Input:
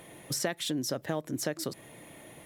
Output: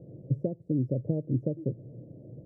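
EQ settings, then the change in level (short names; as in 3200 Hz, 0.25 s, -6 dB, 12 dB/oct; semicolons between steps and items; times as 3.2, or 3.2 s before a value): elliptic low-pass 540 Hz, stop band 60 dB; bell 120 Hz +13.5 dB 0.73 oct; +2.5 dB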